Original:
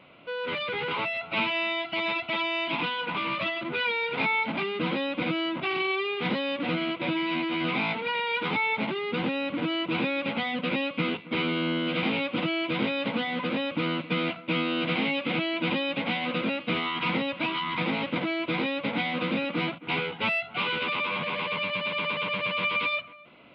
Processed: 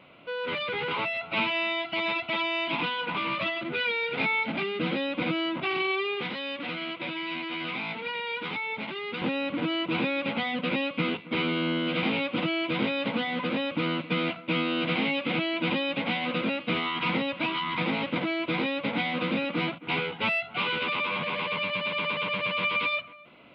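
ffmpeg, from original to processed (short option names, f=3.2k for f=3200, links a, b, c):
-filter_complex "[0:a]asettb=1/sr,asplit=3[a][b][c];[a]atrim=end=3.624[d];[b]atrim=start=3.62:end=5.13,asetpts=PTS-STARTPTS,afade=t=in:d=0.004:c=qsin,afade=t=out:st=1.506:d=0.004:c=qsin,equalizer=f=1k:t=o:w=0.35:g=-7[e];[c]atrim=start=5.126[f];[d][e]acrossfade=d=0.004:c1=hsin:c2=qsin[g];[g][f]acrossfade=d=0.004:c1=qsin:c2=hsin,asettb=1/sr,asplit=3[h][i][j];[h]atrim=end=6.214[k];[i]atrim=start=6.21:end=9.22,asetpts=PTS-STARTPTS,afade=t=in:d=0.004:c=qsin,afade=t=out:st=3.006:d=0.004:c=qsin,acrossover=split=570|1400[l][m][n];[l]acompressor=threshold=-39dB:ratio=4[o];[m]acompressor=threshold=-43dB:ratio=4[p];[n]acompressor=threshold=-33dB:ratio=4[q];[o][p][q]amix=inputs=3:normalize=0[r];[j]atrim=start=9.216[s];[k][r]acrossfade=d=0.004:c1=hsin:c2=qsin[t];[t][s]acrossfade=d=0.004:c1=qsin:c2=hsin"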